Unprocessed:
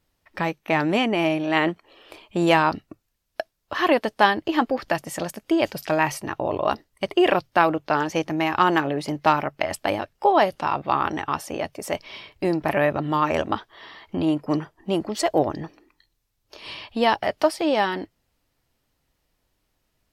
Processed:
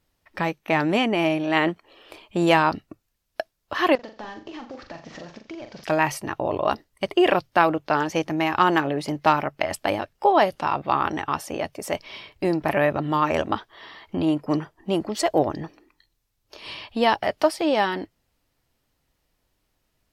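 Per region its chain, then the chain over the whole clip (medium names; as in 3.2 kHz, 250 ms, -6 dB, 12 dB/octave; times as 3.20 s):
3.95–5.84 s: CVSD coder 32 kbps + compression 4:1, threshold -37 dBFS + flutter echo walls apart 7.1 m, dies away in 0.34 s
whole clip: none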